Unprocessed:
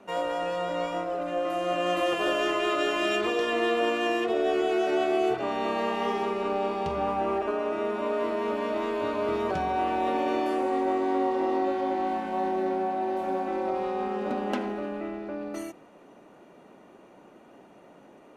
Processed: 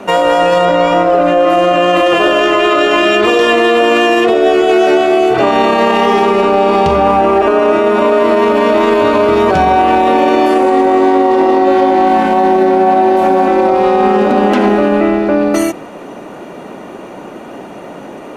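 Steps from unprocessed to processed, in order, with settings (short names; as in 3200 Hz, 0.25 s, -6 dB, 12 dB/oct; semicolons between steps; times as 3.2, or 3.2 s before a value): 0.65–3.25 high shelf 6900 Hz -10.5 dB; maximiser +24.5 dB; gain -1 dB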